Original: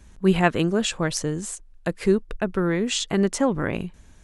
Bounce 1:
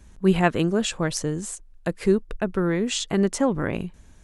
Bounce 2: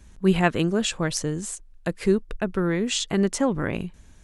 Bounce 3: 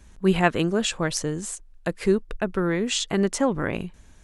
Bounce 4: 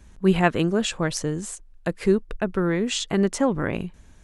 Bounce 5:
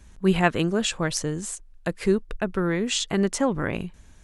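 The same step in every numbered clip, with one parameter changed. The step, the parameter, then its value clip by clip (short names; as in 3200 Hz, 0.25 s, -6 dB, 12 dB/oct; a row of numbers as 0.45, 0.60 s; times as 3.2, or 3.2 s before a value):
bell, frequency: 2700, 820, 130, 10000, 320 Hz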